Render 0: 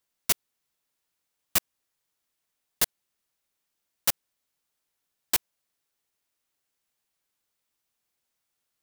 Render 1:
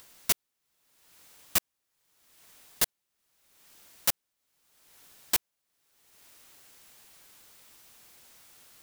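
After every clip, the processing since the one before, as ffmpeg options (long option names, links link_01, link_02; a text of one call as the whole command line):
ffmpeg -i in.wav -af "acompressor=mode=upward:threshold=-33dB:ratio=2.5,volume=-1.5dB" out.wav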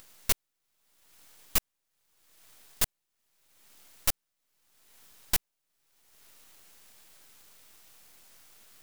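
ffmpeg -i in.wav -af "aeval=exprs='max(val(0),0)':channel_layout=same,volume=3dB" out.wav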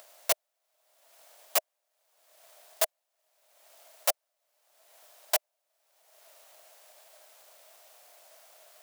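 ffmpeg -i in.wav -af "highpass=frequency=630:width_type=q:width=7.7" out.wav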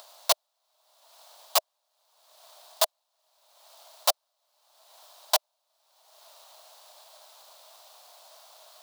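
ffmpeg -i in.wav -af "equalizer=frequency=125:width_type=o:width=1:gain=-4,equalizer=frequency=250:width_type=o:width=1:gain=-11,equalizer=frequency=1000:width_type=o:width=1:gain=11,equalizer=frequency=2000:width_type=o:width=1:gain=-7,equalizer=frequency=4000:width_type=o:width=1:gain=11" out.wav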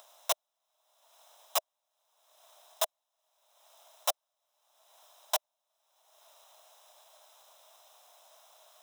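ffmpeg -i in.wav -af "asuperstop=centerf=4500:order=4:qfactor=4.7,volume=-6dB" out.wav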